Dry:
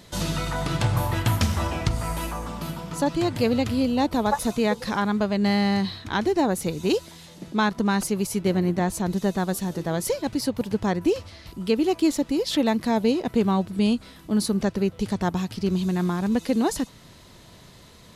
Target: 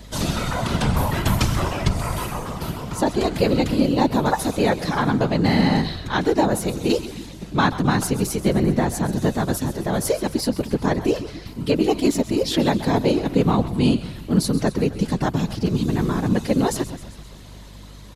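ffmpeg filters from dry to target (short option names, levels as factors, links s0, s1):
-filter_complex "[0:a]asplit=7[s0][s1][s2][s3][s4][s5][s6];[s1]adelay=131,afreqshift=-57,volume=0.2[s7];[s2]adelay=262,afreqshift=-114,volume=0.116[s8];[s3]adelay=393,afreqshift=-171,volume=0.0668[s9];[s4]adelay=524,afreqshift=-228,volume=0.0389[s10];[s5]adelay=655,afreqshift=-285,volume=0.0226[s11];[s6]adelay=786,afreqshift=-342,volume=0.013[s12];[s0][s7][s8][s9][s10][s11][s12]amix=inputs=7:normalize=0,afftfilt=real='hypot(re,im)*cos(2*PI*random(0))':imag='hypot(re,im)*sin(2*PI*random(1))':win_size=512:overlap=0.75,aeval=exprs='val(0)+0.00316*(sin(2*PI*50*n/s)+sin(2*PI*2*50*n/s)/2+sin(2*PI*3*50*n/s)/3+sin(2*PI*4*50*n/s)/4+sin(2*PI*5*50*n/s)/5)':c=same,volume=2.82"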